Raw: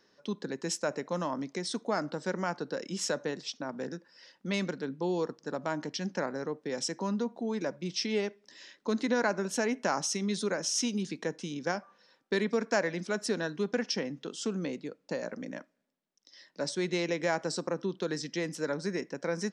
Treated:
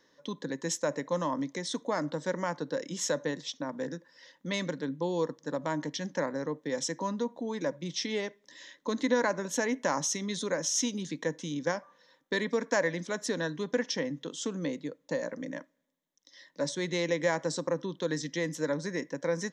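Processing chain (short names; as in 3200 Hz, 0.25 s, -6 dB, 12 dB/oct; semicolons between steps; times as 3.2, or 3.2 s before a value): ripple EQ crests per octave 1.1, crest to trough 8 dB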